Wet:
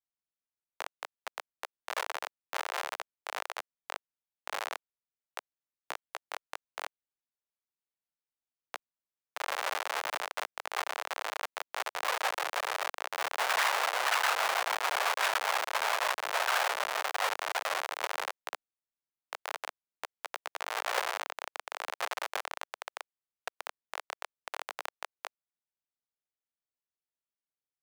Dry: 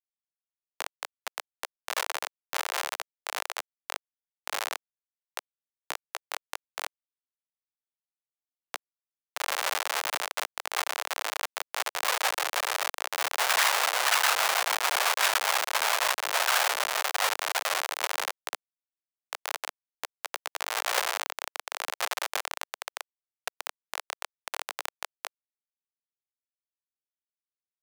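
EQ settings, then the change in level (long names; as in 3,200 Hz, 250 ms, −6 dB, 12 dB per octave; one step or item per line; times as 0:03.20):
high-shelf EQ 3,400 Hz −9.5 dB
−1.5 dB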